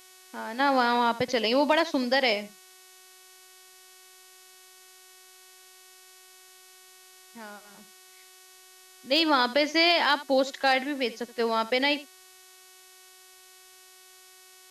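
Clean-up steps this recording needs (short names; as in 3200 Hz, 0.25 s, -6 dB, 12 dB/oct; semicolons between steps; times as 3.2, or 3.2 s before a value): clip repair -11.5 dBFS; de-hum 371.9 Hz, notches 35; noise print and reduce 18 dB; inverse comb 77 ms -17 dB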